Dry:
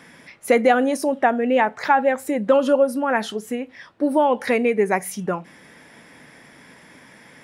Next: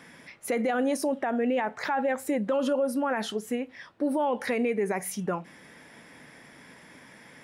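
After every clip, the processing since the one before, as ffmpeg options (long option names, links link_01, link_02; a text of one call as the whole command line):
ffmpeg -i in.wav -af "alimiter=limit=-15.5dB:level=0:latency=1:release=41,volume=-3.5dB" out.wav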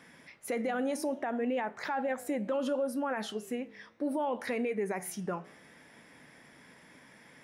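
ffmpeg -i in.wav -af "flanger=delay=9:depth=8.5:regen=-89:speed=0.66:shape=triangular,volume=-1dB" out.wav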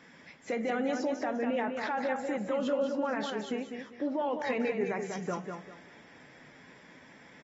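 ffmpeg -i in.wav -af "aecho=1:1:198|396|594|792:0.501|0.14|0.0393|0.011" -ar 44100 -c:a aac -b:a 24k out.aac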